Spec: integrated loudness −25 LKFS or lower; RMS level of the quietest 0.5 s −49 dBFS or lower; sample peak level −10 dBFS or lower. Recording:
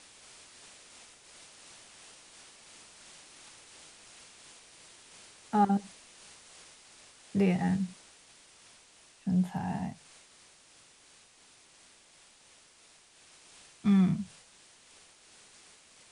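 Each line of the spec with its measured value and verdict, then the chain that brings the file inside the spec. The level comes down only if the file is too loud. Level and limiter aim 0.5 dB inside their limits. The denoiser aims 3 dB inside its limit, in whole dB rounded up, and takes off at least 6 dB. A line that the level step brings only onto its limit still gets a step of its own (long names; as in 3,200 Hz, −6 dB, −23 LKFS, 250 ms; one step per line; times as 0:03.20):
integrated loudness −30.0 LKFS: in spec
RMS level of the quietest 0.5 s −60 dBFS: in spec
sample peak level −15.0 dBFS: in spec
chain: no processing needed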